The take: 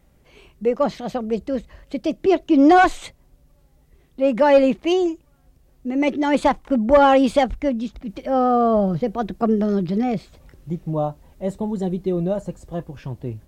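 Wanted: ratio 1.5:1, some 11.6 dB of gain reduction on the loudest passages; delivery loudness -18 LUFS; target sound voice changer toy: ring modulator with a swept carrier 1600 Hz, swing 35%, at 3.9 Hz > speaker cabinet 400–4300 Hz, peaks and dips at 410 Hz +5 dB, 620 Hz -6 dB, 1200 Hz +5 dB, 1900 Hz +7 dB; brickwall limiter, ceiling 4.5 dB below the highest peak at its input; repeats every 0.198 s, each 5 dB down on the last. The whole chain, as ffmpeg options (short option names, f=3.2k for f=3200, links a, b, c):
-af "acompressor=threshold=-43dB:ratio=1.5,alimiter=limit=-21dB:level=0:latency=1,aecho=1:1:198|396|594|792|990|1188|1386:0.562|0.315|0.176|0.0988|0.0553|0.031|0.0173,aeval=exprs='val(0)*sin(2*PI*1600*n/s+1600*0.35/3.9*sin(2*PI*3.9*n/s))':c=same,highpass=400,equalizer=f=410:t=q:w=4:g=5,equalizer=f=620:t=q:w=4:g=-6,equalizer=f=1.2k:t=q:w=4:g=5,equalizer=f=1.9k:t=q:w=4:g=7,lowpass=f=4.3k:w=0.5412,lowpass=f=4.3k:w=1.3066,volume=9dB"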